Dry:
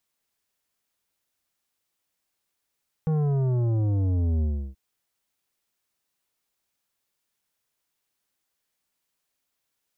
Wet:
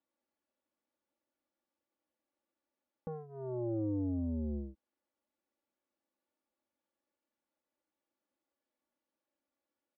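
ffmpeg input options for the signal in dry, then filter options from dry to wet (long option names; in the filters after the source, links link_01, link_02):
-f lavfi -i "aevalsrc='0.0794*clip((1.68-t)/0.33,0,1)*tanh(3.35*sin(2*PI*160*1.68/log(65/160)*(exp(log(65/160)*t/1.68)-1)))/tanh(3.35)':duration=1.68:sample_rate=44100"
-af "alimiter=level_in=2.5dB:limit=-24dB:level=0:latency=1,volume=-2.5dB,bandpass=frequency=380:width_type=q:width=0.92:csg=0,aecho=1:1:3.5:0.9"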